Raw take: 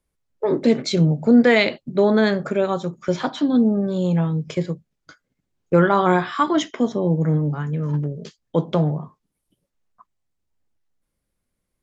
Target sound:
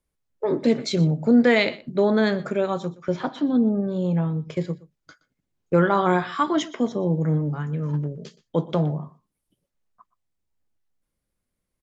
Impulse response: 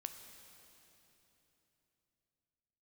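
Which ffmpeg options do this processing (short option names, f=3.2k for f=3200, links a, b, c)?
-filter_complex "[0:a]asettb=1/sr,asplit=3[a][b][c];[a]atrim=end=2.944[d];[b]atrim=start=2.94:end=4.57,asetpts=PTS-STARTPTS,afade=t=in:d=0.004:c=qsin,afade=t=out:st=1.626:d=0.004:c=qsin,highshelf=f=3.6k:g=-11[e];[c]atrim=start=4.566[f];[d][e]acrossfade=d=0.004:c1=hsin:c2=qsin[g];[g][f]acrossfade=d=0.004:c1=qsin:c2=hsin,asplit=2[h][i];[i]aecho=0:1:121:0.106[j];[h][j]amix=inputs=2:normalize=0,volume=-3dB"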